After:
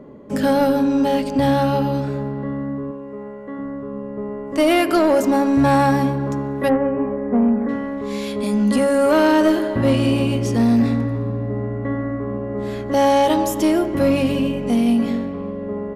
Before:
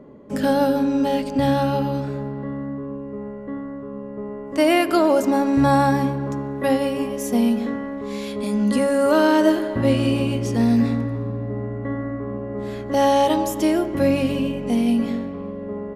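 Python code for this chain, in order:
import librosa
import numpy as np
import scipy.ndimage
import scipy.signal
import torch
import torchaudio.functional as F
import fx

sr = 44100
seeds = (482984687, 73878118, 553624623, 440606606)

y = fx.low_shelf(x, sr, hz=250.0, db=-11.5, at=(2.91, 3.59))
y = fx.steep_lowpass(y, sr, hz=1800.0, slope=36, at=(6.68, 7.68), fade=0.02)
y = 10.0 ** (-12.0 / 20.0) * np.tanh(y / 10.0 ** (-12.0 / 20.0))
y = y * librosa.db_to_amplitude(3.5)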